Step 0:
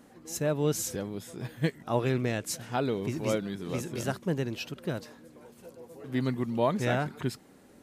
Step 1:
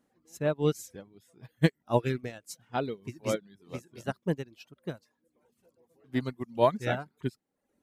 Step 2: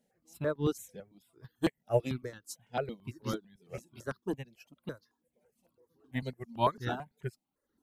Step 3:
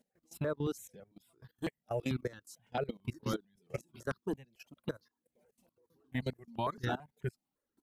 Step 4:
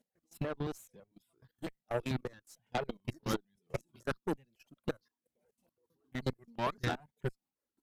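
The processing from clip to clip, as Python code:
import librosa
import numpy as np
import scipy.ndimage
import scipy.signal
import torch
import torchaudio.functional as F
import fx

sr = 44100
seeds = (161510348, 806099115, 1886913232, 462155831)

y1 = fx.dereverb_blind(x, sr, rt60_s=0.81)
y1 = fx.upward_expand(y1, sr, threshold_db=-38.0, expansion=2.5)
y1 = y1 * 10.0 ** (6.0 / 20.0)
y2 = fx.phaser_held(y1, sr, hz=9.0, low_hz=310.0, high_hz=2400.0)
y3 = fx.level_steps(y2, sr, step_db=19)
y3 = y3 * 10.0 ** (5.5 / 20.0)
y4 = fx.cheby_harmonics(y3, sr, harmonics=(3, 7, 8), levels_db=(-25, -26, -22), full_scale_db=-20.0)
y4 = y4 * (1.0 - 0.5 / 2.0 + 0.5 / 2.0 * np.cos(2.0 * np.pi * 5.1 * (np.arange(len(y4)) / sr)))
y4 = y4 * 10.0 ** (3.5 / 20.0)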